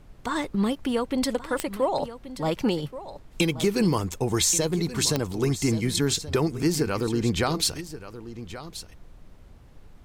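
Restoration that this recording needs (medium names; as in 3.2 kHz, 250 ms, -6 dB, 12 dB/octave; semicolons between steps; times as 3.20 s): de-click; noise print and reduce 24 dB; inverse comb 1129 ms -14 dB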